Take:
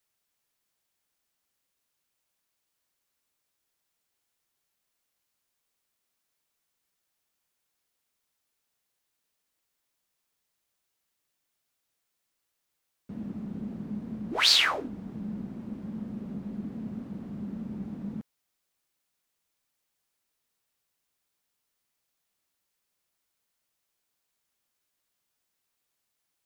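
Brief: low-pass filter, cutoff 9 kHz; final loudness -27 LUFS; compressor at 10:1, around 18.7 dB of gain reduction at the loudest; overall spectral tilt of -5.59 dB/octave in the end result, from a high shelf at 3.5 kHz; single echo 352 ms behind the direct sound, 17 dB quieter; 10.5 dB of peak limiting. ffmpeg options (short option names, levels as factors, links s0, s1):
-af "lowpass=9000,highshelf=f=3500:g=4.5,acompressor=threshold=0.02:ratio=10,alimiter=level_in=2.99:limit=0.0631:level=0:latency=1,volume=0.335,aecho=1:1:352:0.141,volume=5.31"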